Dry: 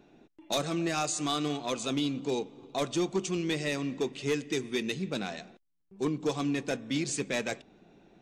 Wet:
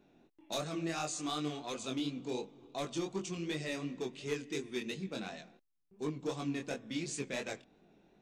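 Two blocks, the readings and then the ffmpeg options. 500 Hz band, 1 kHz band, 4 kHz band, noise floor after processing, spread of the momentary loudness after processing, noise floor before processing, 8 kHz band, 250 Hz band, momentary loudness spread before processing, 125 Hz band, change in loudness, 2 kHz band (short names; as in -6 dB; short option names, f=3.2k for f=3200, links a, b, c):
-7.0 dB, -7.0 dB, -7.0 dB, -70 dBFS, 5 LU, -68 dBFS, -7.0 dB, -7.0 dB, 5 LU, -6.5 dB, -7.0 dB, -7.0 dB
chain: -af "flanger=delay=19.5:depth=5:speed=2.8,volume=-4dB"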